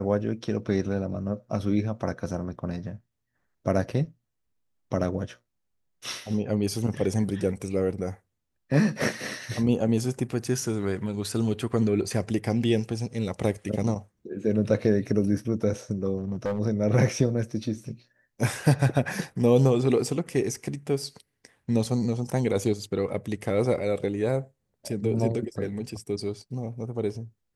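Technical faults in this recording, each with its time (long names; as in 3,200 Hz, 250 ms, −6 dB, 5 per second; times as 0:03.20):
0:16.18–0:16.60: clipping −24 dBFS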